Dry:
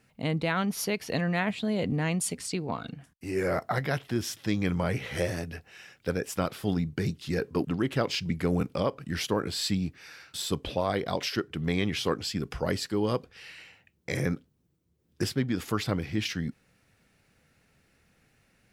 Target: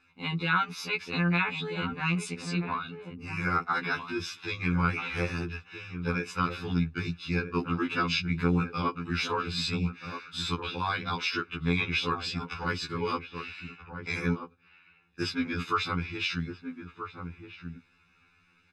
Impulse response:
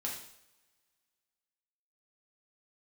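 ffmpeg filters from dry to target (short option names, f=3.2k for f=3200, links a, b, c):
-filter_complex "[0:a]lowpass=3.3k,tiltshelf=f=640:g=-7,aecho=1:1:0.8:0.88,asplit=2[a][b];[b]adelay=1283,volume=-8dB,highshelf=f=4k:g=-28.9[c];[a][c]amix=inputs=2:normalize=0,afftfilt=real='re*2*eq(mod(b,4),0)':imag='im*2*eq(mod(b,4),0)':win_size=2048:overlap=0.75"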